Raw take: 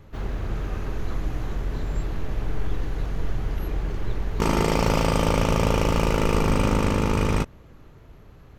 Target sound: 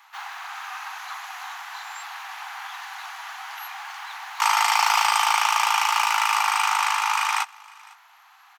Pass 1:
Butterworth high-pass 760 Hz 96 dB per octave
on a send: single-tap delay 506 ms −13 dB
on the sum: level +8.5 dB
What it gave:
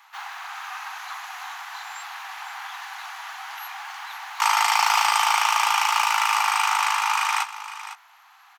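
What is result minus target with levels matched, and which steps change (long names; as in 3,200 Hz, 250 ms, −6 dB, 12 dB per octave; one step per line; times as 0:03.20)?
echo-to-direct +11 dB
change: single-tap delay 506 ms −24 dB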